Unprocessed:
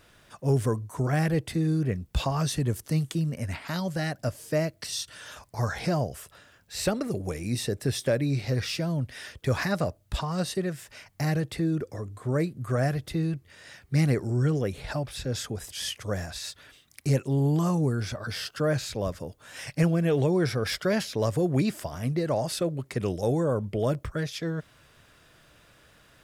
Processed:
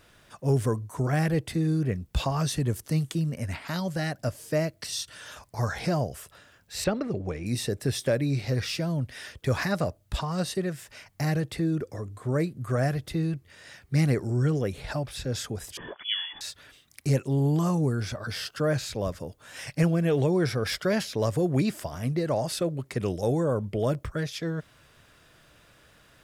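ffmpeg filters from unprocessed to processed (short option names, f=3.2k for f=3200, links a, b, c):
-filter_complex "[0:a]asettb=1/sr,asplit=3[a][b][c];[a]atrim=end=6.844[d];[b]atrim=start=6.84:end=7.46,asetpts=PTS-STARTPTS,afade=t=in:d=0.004:c=qsin,afade=t=out:st=0.616:d=0.004:c=qsin,lowpass=3.5k[e];[c]atrim=start=7.456[f];[d][e]acrossfade=d=0.004:c1=hsin:c2=qsin[g];[g][f]acrossfade=d=0.004:c1=qsin:c2=hsin,asettb=1/sr,asplit=3[h][i][j];[h]atrim=end=15.774[k];[i]atrim=start=15.77:end=16.41,asetpts=PTS-STARTPTS,afade=t=in:d=0.004:c=qsin,afade=t=out:st=0.636:d=0.004:c=qsin,lowpass=f=3k:t=q:w=0.5098,lowpass=f=3k:t=q:w=0.6013,lowpass=f=3k:t=q:w=0.9,lowpass=f=3k:t=q:w=2.563,afreqshift=-3500[l];[j]atrim=start=16.406[m];[k][l]acrossfade=d=0.004:c1=hsin:c2=qsin[n];[n][m]acrossfade=d=0.004:c1=qsin:c2=hsin"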